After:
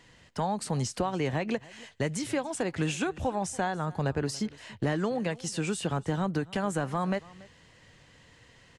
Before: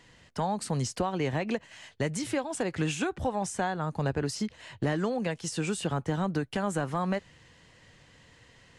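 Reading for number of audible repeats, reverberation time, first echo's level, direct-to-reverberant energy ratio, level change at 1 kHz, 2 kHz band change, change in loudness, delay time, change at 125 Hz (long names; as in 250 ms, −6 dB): 1, no reverb audible, −21.5 dB, no reverb audible, 0.0 dB, 0.0 dB, 0.0 dB, 284 ms, 0.0 dB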